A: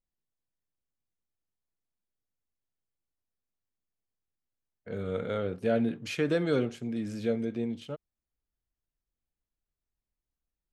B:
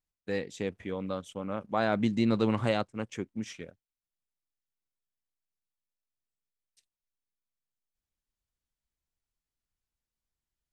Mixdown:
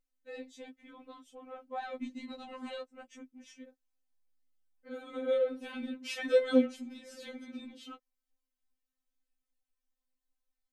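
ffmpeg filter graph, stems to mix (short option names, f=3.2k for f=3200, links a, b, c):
-filter_complex "[0:a]volume=1.5dB[a];[1:a]lowshelf=f=160:g=12,volume=-9dB[b];[a][b]amix=inputs=2:normalize=0,afftfilt=real='re*3.46*eq(mod(b,12),0)':imag='im*3.46*eq(mod(b,12),0)':win_size=2048:overlap=0.75"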